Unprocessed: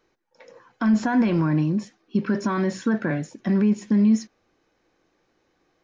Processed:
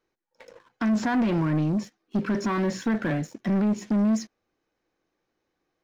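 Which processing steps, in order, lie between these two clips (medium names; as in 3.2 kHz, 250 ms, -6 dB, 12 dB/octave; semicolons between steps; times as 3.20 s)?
waveshaping leveller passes 2; loudspeaker Doppler distortion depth 0.11 ms; trim -6.5 dB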